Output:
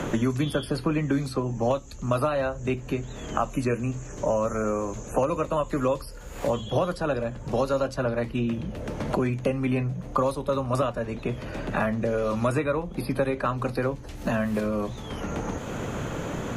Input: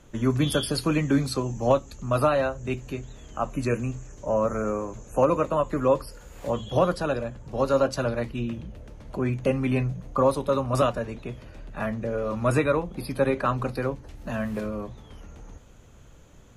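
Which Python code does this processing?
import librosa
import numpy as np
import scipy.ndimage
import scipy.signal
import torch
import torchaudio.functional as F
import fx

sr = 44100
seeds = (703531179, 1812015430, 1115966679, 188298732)

y = fx.band_squash(x, sr, depth_pct=100)
y = y * librosa.db_to_amplitude(-1.5)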